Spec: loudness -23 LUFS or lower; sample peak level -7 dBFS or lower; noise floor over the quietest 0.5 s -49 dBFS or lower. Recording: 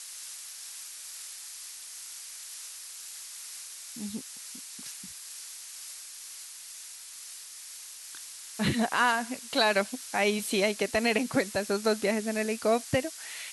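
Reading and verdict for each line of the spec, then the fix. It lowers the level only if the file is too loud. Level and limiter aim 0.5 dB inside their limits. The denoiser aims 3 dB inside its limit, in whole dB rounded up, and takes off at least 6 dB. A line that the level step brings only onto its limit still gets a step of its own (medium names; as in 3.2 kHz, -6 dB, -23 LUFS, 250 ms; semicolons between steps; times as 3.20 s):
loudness -31.5 LUFS: pass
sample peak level -12.0 dBFS: pass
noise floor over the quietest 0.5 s -45 dBFS: fail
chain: noise reduction 7 dB, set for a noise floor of -45 dBFS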